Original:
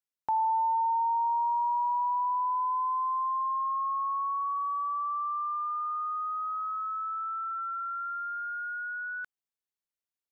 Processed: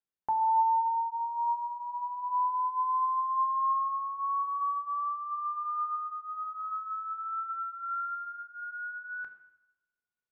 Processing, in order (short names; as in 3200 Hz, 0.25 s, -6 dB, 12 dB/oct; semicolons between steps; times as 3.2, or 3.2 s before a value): LPF 1300 Hz 6 dB/oct; on a send: reverb RT60 0.90 s, pre-delay 3 ms, DRR 4 dB